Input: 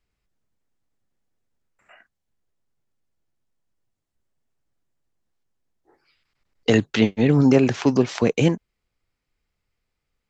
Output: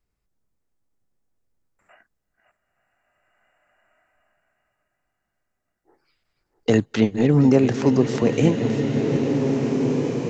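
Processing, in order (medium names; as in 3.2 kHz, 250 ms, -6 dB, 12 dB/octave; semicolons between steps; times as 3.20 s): chunks repeated in reverse 367 ms, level -10.5 dB; peaking EQ 2.9 kHz -6.5 dB 1.7 oct; shuffle delay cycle 1452 ms, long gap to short 1.5:1, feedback 61%, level -23.5 dB; swelling reverb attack 2020 ms, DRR 3.5 dB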